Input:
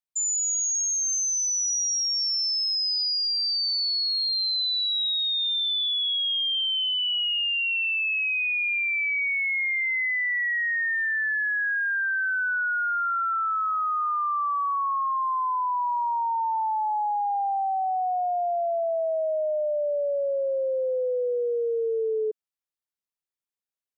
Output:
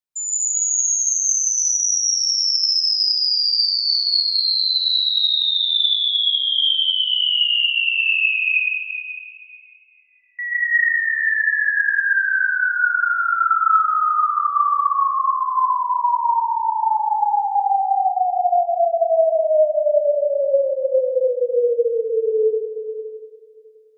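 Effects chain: 8.48–10.39 s: elliptic low-pass 1.3 kHz, stop band 40 dB; algorithmic reverb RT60 2.4 s, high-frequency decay 0.9×, pre-delay 85 ms, DRR -6.5 dB

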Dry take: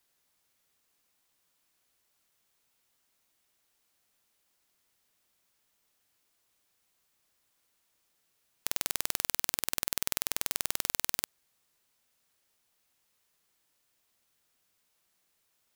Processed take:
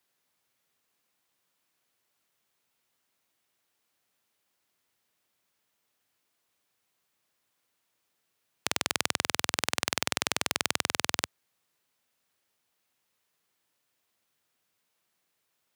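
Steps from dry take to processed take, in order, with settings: tracing distortion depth 0.022 ms; high-pass 84 Hz 24 dB/octave; tone controls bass -1 dB, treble -4 dB

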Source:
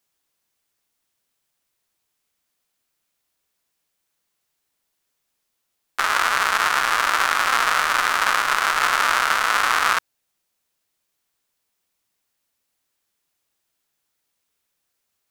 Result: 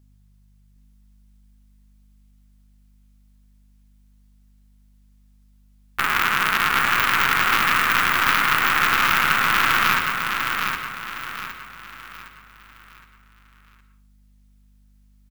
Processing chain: tracing distortion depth 0.35 ms; hum 50 Hz, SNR 29 dB; feedback delay 764 ms, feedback 39%, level -5 dB; reverberation RT60 0.50 s, pre-delay 111 ms, DRR 9 dB; trim -1 dB

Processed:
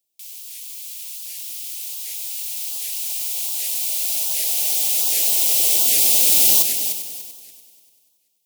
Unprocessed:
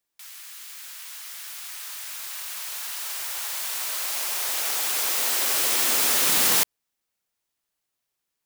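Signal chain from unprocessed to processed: Chebyshev band-stop 740–2700 Hz, order 2; treble shelf 5.1 kHz +9.5 dB; on a send: multi-head delay 97 ms, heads first and third, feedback 47%, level -9 dB; on the sum: warped record 78 rpm, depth 250 cents; trim -1.5 dB

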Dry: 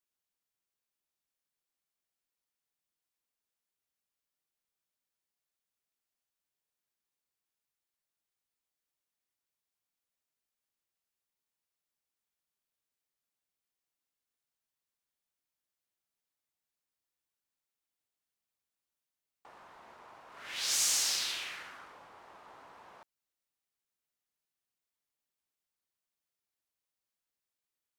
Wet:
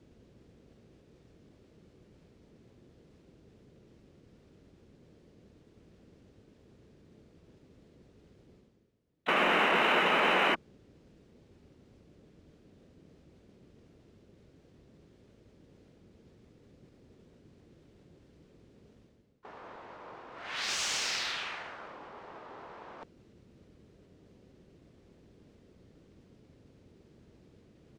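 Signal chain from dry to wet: painted sound noise, 9.28–10.55 s, 340–3100 Hz -28 dBFS; distance through air 130 m; in parallel at -7 dB: hard clipper -36 dBFS, distortion -5 dB; on the sum: band noise 59–460 Hz -80 dBFS; reverse; upward compressor, threshold -44 dBFS; reverse; harmony voices -12 st -3 dB, +4 st -17 dB, +5 st -15 dB

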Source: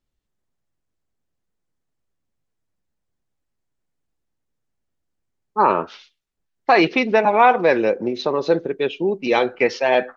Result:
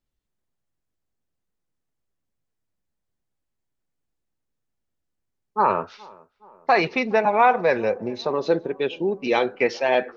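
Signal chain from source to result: 5.59–8.30 s: graphic EQ with 31 bands 100 Hz +9 dB, 315 Hz -10 dB, 3.15 kHz -7 dB; tape echo 419 ms, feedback 68%, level -22.5 dB, low-pass 1.2 kHz; trim -3 dB

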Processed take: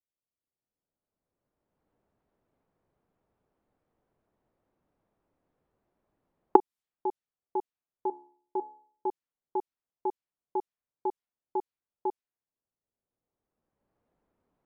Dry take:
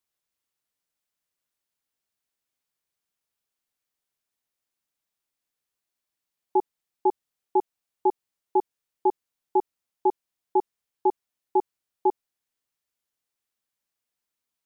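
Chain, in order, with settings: recorder AGC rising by 16 dB/s; 8.08–9.07 s: de-hum 71.1 Hz, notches 29; level-controlled noise filter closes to 610 Hz, open at -19 dBFS; trim -9 dB

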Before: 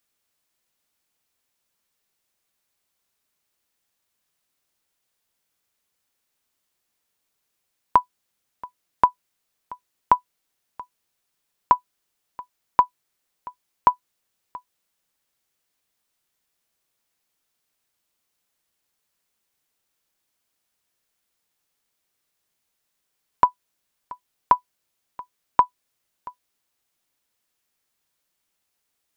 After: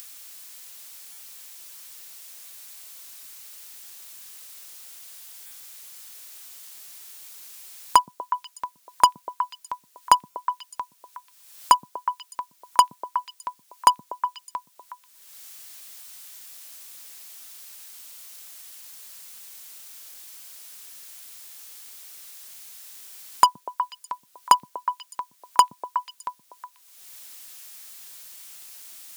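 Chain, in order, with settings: bass shelf 370 Hz -11 dB; in parallel at -3 dB: wavefolder -22.5 dBFS; on the sum: repeats whose band climbs or falls 122 ms, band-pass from 180 Hz, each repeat 1.4 oct, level -3 dB; upward compressor, threshold -39 dBFS; treble shelf 3 kHz +10.5 dB; buffer glitch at 1.12/5.46/10.30 s, samples 256, times 8; trim +1.5 dB

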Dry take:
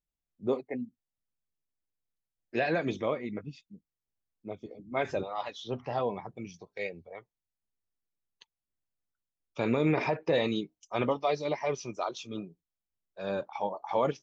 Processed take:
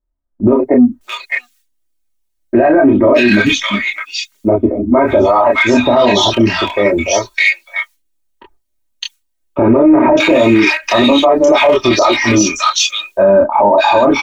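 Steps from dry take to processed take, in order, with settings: rattle on loud lows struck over -33 dBFS, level -37 dBFS; gate with hold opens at -54 dBFS; treble shelf 4.5 kHz +4.5 dB; band-stop 5 kHz, Q 21; comb 3.2 ms, depth 86%; compression 4:1, threshold -29 dBFS, peak gain reduction 8.5 dB; chorus voices 6, 0.23 Hz, delay 27 ms, depth 2.5 ms; in parallel at -9.5 dB: saturation -36 dBFS, distortion -10 dB; on the sum: bands offset in time lows, highs 610 ms, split 1.4 kHz; loudness maximiser +33 dB; trim -1 dB

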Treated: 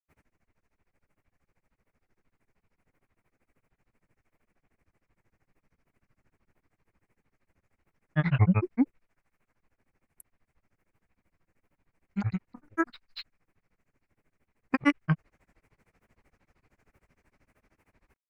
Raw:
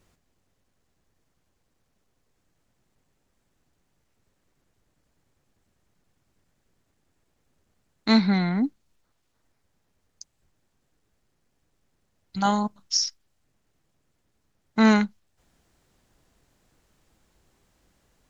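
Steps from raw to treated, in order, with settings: granulator 80 ms, grains 13 per s, spray 208 ms, pitch spread up and down by 12 st; resonant high shelf 2.8 kHz -7 dB, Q 3; trim +2.5 dB

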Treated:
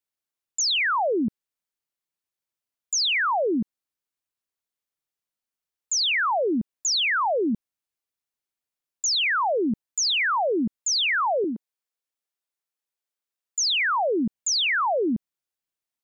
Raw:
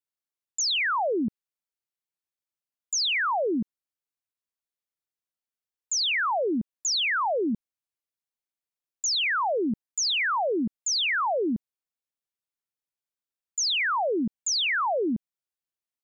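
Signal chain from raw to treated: 11.44–14.00 s: high-pass 310 Hz 12 dB/octave; trim +2.5 dB

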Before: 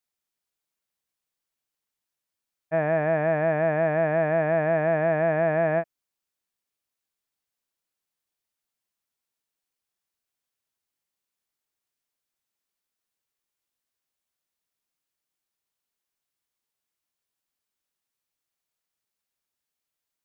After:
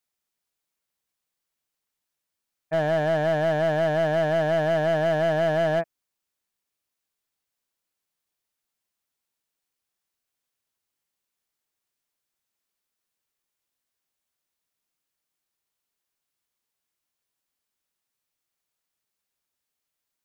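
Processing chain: hard clipper -20.5 dBFS, distortion -12 dB; trim +2 dB

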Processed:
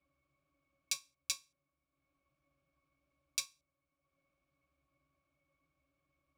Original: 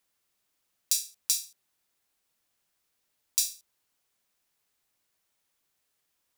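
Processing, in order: transient shaper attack +11 dB, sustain -6 dB; pitch-class resonator C#, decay 0.13 s; trim +17 dB

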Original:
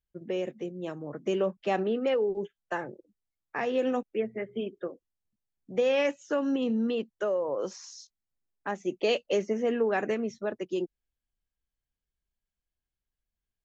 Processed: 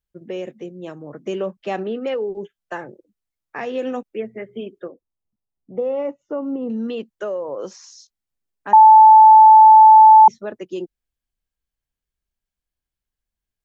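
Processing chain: 4.88–6.70 s: Savitzky-Golay filter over 65 samples; 8.73–10.28 s: bleep 873 Hz -6.5 dBFS; trim +2.5 dB

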